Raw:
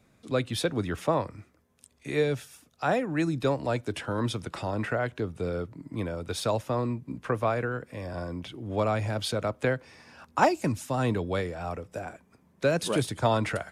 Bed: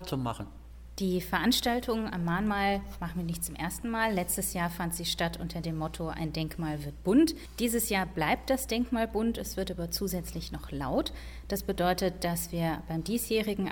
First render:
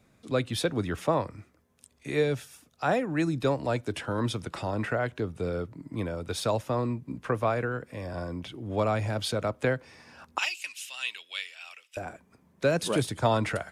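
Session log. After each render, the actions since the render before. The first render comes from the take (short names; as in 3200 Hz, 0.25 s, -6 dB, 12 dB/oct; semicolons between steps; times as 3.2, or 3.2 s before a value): 10.38–11.97 resonant high-pass 2800 Hz, resonance Q 4.6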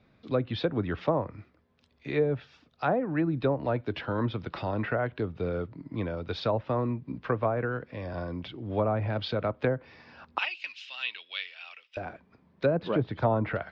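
treble ducked by the level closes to 910 Hz, closed at -21 dBFS; steep low-pass 4700 Hz 36 dB/oct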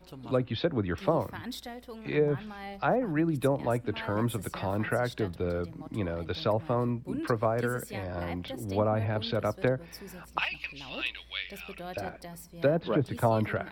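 add bed -13.5 dB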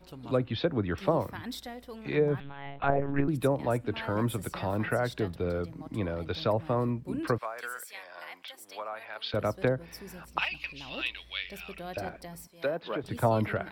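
2.4–3.28 monotone LPC vocoder at 8 kHz 140 Hz; 7.38–9.34 HPF 1200 Hz; 12.47–13.04 HPF 800 Hz 6 dB/oct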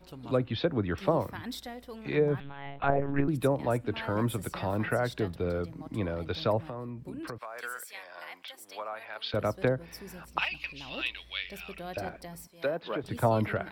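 6.67–7.55 compressor 5:1, threshold -36 dBFS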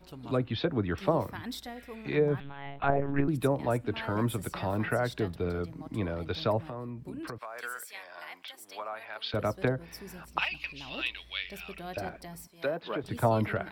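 notch 520 Hz, Q 15; 1.78–1.99 spectral repair 1300–4900 Hz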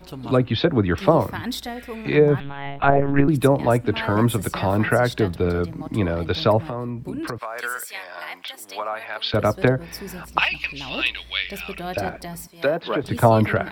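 gain +10.5 dB; limiter -1 dBFS, peak gain reduction 1.5 dB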